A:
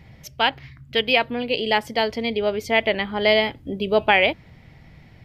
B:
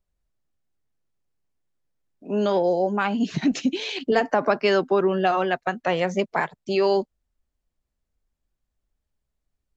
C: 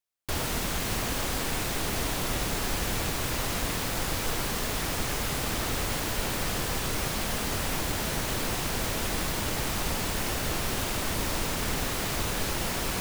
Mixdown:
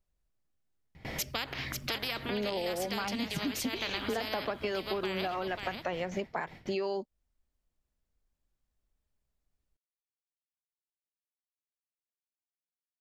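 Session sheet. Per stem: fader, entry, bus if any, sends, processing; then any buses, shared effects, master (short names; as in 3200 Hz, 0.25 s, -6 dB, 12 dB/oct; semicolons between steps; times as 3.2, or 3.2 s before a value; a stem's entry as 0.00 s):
-8.0 dB, 0.95 s, no send, echo send -8.5 dB, gate with hold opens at -37 dBFS; spectral compressor 4:1
-2.5 dB, 0.00 s, no send, no echo send, dry
off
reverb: off
echo: echo 0.541 s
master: compressor 6:1, threshold -31 dBFS, peak gain reduction 13 dB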